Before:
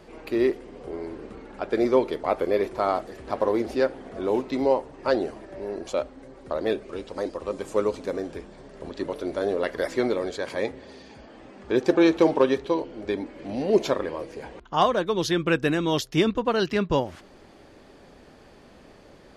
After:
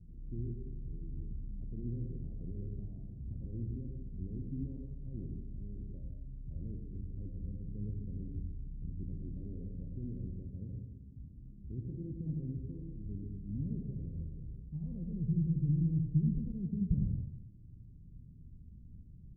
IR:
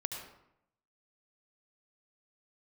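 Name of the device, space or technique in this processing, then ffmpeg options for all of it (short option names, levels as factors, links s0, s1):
club heard from the street: -filter_complex "[0:a]alimiter=limit=0.126:level=0:latency=1:release=21,lowpass=f=150:w=0.5412,lowpass=f=150:w=1.3066[s0];[1:a]atrim=start_sample=2205[s1];[s0][s1]afir=irnorm=-1:irlink=0,volume=1.88"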